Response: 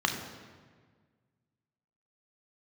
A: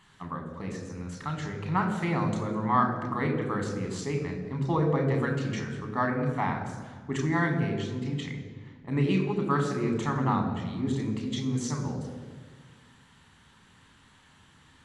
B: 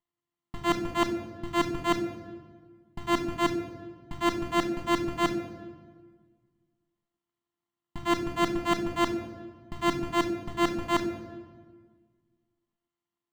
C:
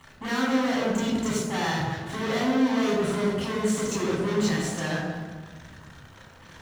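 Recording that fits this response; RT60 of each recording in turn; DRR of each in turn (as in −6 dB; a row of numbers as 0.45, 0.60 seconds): A; 1.6, 1.6, 1.6 seconds; 3.0, 8.5, −5.5 decibels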